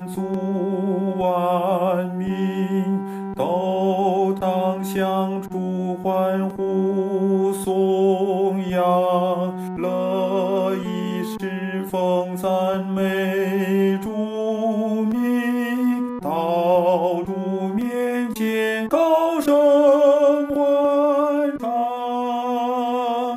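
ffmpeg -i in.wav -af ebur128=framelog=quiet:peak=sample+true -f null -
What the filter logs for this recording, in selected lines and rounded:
Integrated loudness:
  I:         -20.8 LUFS
  Threshold: -30.8 LUFS
Loudness range:
  LRA:         5.0 LU
  Threshold: -40.7 LUFS
  LRA low:   -22.5 LUFS
  LRA high:  -17.5 LUFS
Sample peak:
  Peak:       -6.0 dBFS
True peak:
  Peak:       -6.0 dBFS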